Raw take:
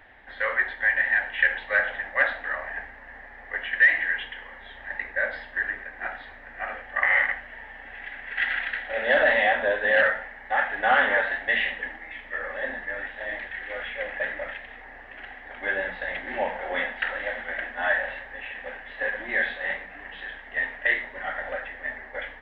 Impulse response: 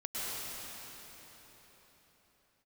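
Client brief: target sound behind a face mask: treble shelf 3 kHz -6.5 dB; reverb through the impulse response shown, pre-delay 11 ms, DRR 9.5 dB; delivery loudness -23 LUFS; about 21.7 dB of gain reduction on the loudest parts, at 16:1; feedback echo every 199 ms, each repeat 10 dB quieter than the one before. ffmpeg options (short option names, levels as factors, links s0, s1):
-filter_complex "[0:a]acompressor=threshold=0.0178:ratio=16,aecho=1:1:199|398|597|796:0.316|0.101|0.0324|0.0104,asplit=2[s0][s1];[1:a]atrim=start_sample=2205,adelay=11[s2];[s1][s2]afir=irnorm=-1:irlink=0,volume=0.188[s3];[s0][s3]amix=inputs=2:normalize=0,highshelf=f=3000:g=-6.5,volume=6.68"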